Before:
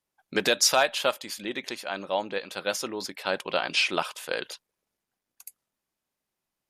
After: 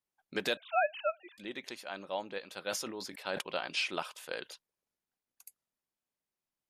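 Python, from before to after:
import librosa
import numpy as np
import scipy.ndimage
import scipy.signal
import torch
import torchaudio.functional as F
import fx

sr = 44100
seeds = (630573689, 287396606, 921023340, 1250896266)

y = fx.sine_speech(x, sr, at=(0.57, 1.38))
y = fx.sustainer(y, sr, db_per_s=49.0, at=(2.68, 3.42))
y = y * 10.0 ** (-9.0 / 20.0)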